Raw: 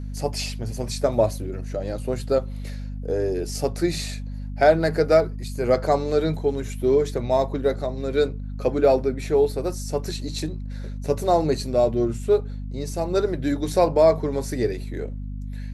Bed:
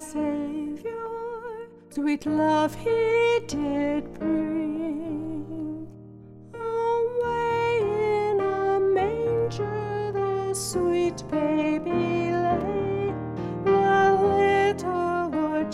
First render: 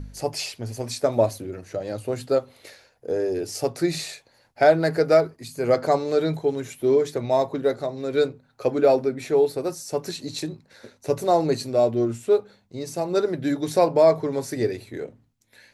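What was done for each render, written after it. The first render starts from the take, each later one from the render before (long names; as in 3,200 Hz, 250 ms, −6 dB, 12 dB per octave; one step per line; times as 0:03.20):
hum removal 50 Hz, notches 5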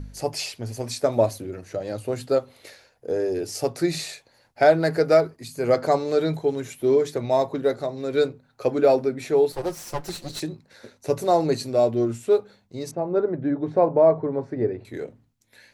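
0:09.52–0:10.40: lower of the sound and its delayed copy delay 5.7 ms
0:12.91–0:14.85: low-pass filter 1,200 Hz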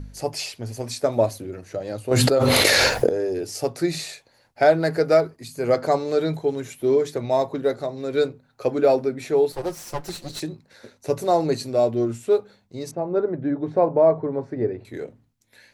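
0:02.11–0:03.09: envelope flattener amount 100%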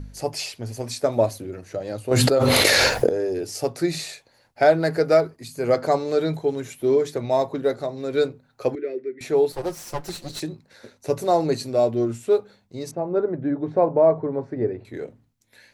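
0:08.75–0:09.21: pair of resonant band-passes 850 Hz, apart 2.4 octaves
0:12.98–0:15.03: high-shelf EQ 4,900 Hz −6 dB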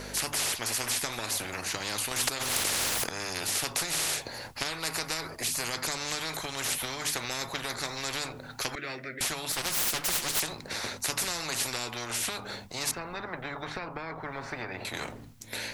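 downward compressor, threshold −23 dBFS, peak gain reduction 12.5 dB
every bin compressed towards the loudest bin 10 to 1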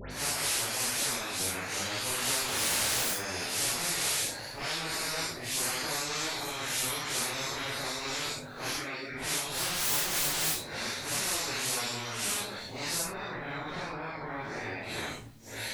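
random phases in long frames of 200 ms
all-pass dispersion highs, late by 109 ms, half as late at 2,200 Hz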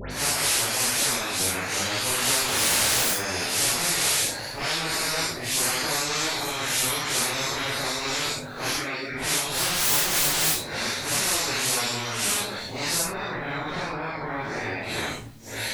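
level +7 dB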